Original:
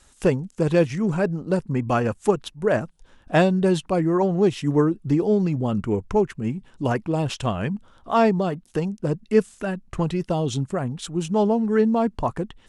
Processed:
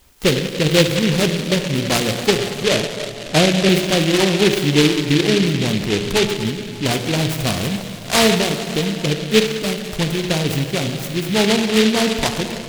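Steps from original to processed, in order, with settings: 2.36–3.69 s: steep low-pass 1 kHz 72 dB/octave; plate-style reverb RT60 3 s, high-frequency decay 0.8×, DRR 4 dB; delay time shaken by noise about 2.8 kHz, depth 0.2 ms; trim +3 dB

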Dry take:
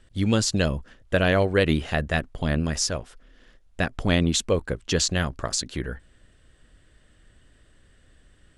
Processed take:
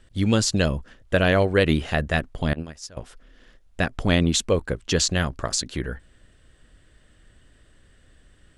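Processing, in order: 2.53–2.97 s: gate -21 dBFS, range -20 dB; trim +1.5 dB

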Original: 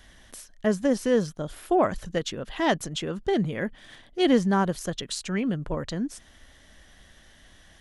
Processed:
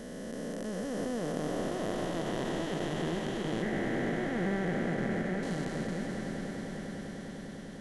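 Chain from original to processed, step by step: spectral blur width 1440 ms; 3.62–5.43 s: FFT filter 430 Hz 0 dB, 700 Hz +4 dB, 1 kHz -6 dB, 2 kHz +9 dB, 3.1 kHz -12 dB; on a send: echo with a slow build-up 100 ms, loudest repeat 8, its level -16 dB

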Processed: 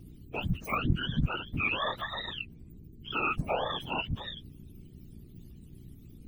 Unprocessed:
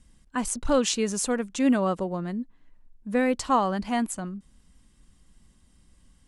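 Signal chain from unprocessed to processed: spectrum inverted on a logarithmic axis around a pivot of 810 Hz; in parallel at -1 dB: compression, threshold -32 dBFS, peak gain reduction 19 dB; on the sum: hum 60 Hz, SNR 14 dB; whisper effect; trim -7.5 dB

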